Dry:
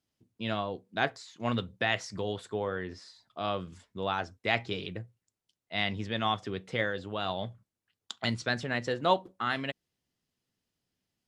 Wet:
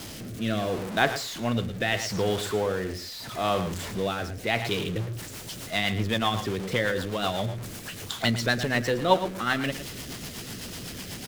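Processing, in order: zero-crossing step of -34.5 dBFS; outdoor echo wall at 19 m, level -11 dB; rotary speaker horn 0.75 Hz, later 8 Hz, at 4.51; gain +5.5 dB

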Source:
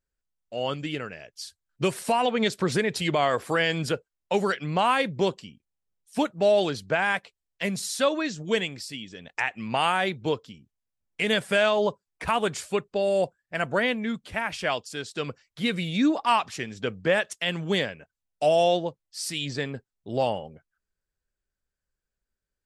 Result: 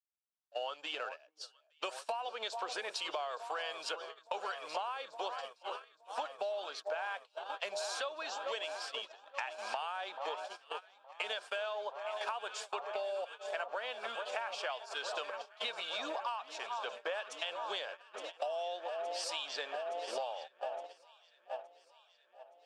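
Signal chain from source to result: G.711 law mismatch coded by mu; bell 2000 Hz -13.5 dB 0.36 oct; AGC gain up to 11 dB; echo with dull and thin repeats by turns 0.434 s, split 1300 Hz, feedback 87%, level -12 dB; gate -23 dBFS, range -21 dB; HPF 630 Hz 24 dB/oct; air absorption 100 m; compressor 16:1, threshold -29 dBFS, peak gain reduction 21 dB; gain -6 dB

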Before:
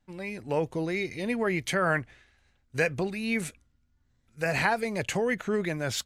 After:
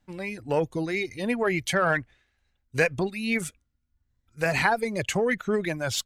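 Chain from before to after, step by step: reverb removal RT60 1.4 s; added harmonics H 8 -35 dB, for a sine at -10.5 dBFS; gain +3.5 dB

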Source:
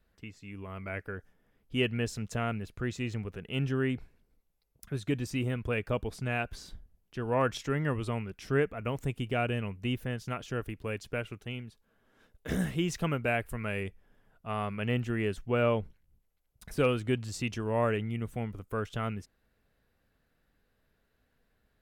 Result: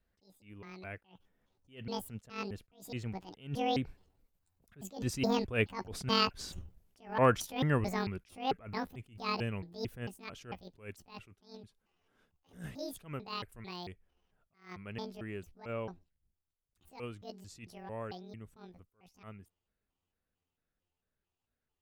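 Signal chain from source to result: trilling pitch shifter +10.5 st, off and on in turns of 0.216 s; Doppler pass-by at 6.14, 12 m/s, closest 17 m; attack slew limiter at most 170 dB/s; gain +5 dB

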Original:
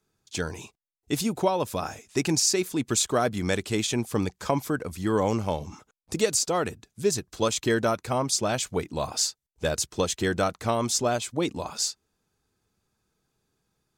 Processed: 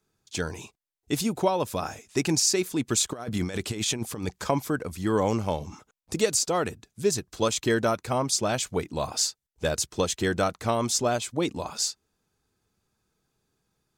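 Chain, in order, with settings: 3.13–4.44 negative-ratio compressor -29 dBFS, ratio -0.5

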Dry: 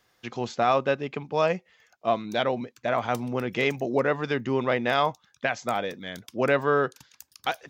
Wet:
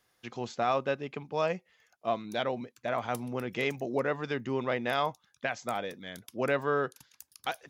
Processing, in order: bell 11000 Hz +11.5 dB 0.45 oct; gain -6 dB

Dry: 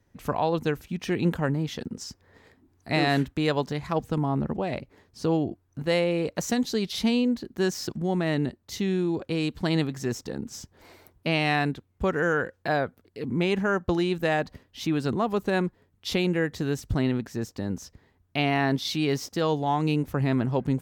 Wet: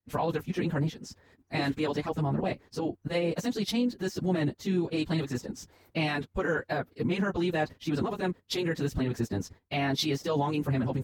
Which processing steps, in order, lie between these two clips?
expander -56 dBFS; level quantiser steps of 16 dB; plain phase-vocoder stretch 0.53×; gain +7.5 dB

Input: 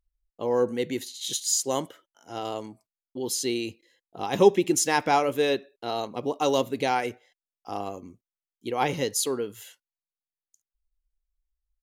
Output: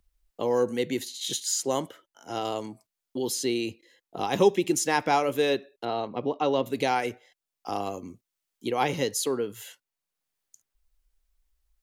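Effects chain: 5.85–6.66 air absorption 310 m; three-band squash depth 40%

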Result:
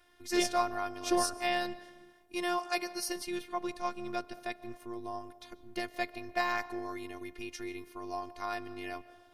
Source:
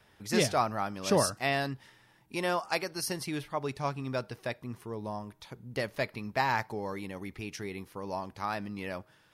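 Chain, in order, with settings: digital reverb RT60 1.5 s, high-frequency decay 0.3×, pre-delay 0.1 s, DRR 17 dB; robotiser 352 Hz

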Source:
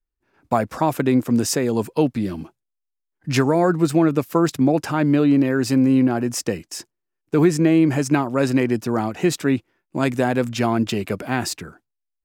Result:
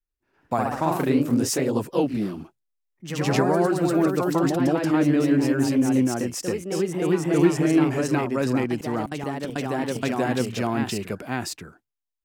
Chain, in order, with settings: 9.05–10.03 flipped gate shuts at -15 dBFS, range -31 dB; echoes that change speed 91 ms, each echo +1 st, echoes 3; gain -5.5 dB

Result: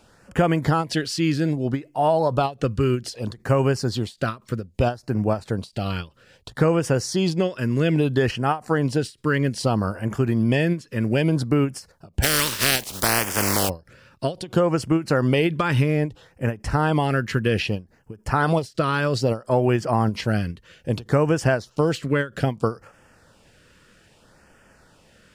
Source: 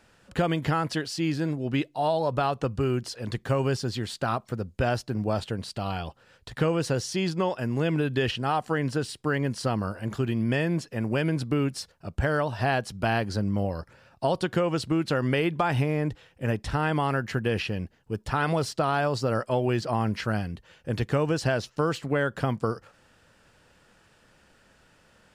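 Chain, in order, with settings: 12.22–13.68 spectral contrast lowered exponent 0.26; LFO notch sine 0.62 Hz 720–4100 Hz; ending taper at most 250 dB/s; gain +6 dB

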